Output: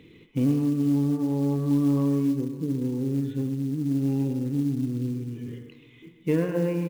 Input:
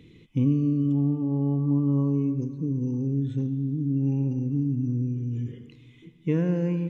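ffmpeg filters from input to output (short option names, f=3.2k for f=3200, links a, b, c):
-filter_complex "[0:a]asplit=2[a][b];[b]adelay=130,highpass=300,lowpass=3.4k,asoftclip=type=hard:threshold=-23.5dB,volume=-10dB[c];[a][c]amix=inputs=2:normalize=0,acontrast=81,bass=f=250:g=-9,treble=f=4k:g=-11,bandreject=f=59.23:t=h:w=4,bandreject=f=118.46:t=h:w=4,bandreject=f=177.69:t=h:w=4,bandreject=f=236.92:t=h:w=4,bandreject=f=296.15:t=h:w=4,bandreject=f=355.38:t=h:w=4,bandreject=f=414.61:t=h:w=4,bandreject=f=473.84:t=h:w=4,bandreject=f=533.07:t=h:w=4,bandreject=f=592.3:t=h:w=4,bandreject=f=651.53:t=h:w=4,bandreject=f=710.76:t=h:w=4,bandreject=f=769.99:t=h:w=4,bandreject=f=829.22:t=h:w=4,bandreject=f=888.45:t=h:w=4,bandreject=f=947.68:t=h:w=4,bandreject=f=1.00691k:t=h:w=4,bandreject=f=1.06614k:t=h:w=4,bandreject=f=1.12537k:t=h:w=4,bandreject=f=1.1846k:t=h:w=4,bandreject=f=1.24383k:t=h:w=4,bandreject=f=1.30306k:t=h:w=4,bandreject=f=1.36229k:t=h:w=4,bandreject=f=1.42152k:t=h:w=4,bandreject=f=1.48075k:t=h:w=4,bandreject=f=1.53998k:t=h:w=4,bandreject=f=1.59921k:t=h:w=4,bandreject=f=1.65844k:t=h:w=4,bandreject=f=1.71767k:t=h:w=4,bandreject=f=1.7769k:t=h:w=4,bandreject=f=1.83613k:t=h:w=4,bandreject=f=1.89536k:t=h:w=4,bandreject=f=1.95459k:t=h:w=4,bandreject=f=2.01382k:t=h:w=4,bandreject=f=2.07305k:t=h:w=4,bandreject=f=2.13228k:t=h:w=4,bandreject=f=2.19151k:t=h:w=4,bandreject=f=2.25074k:t=h:w=4,acrusher=bits=7:mode=log:mix=0:aa=0.000001,volume=-1.5dB"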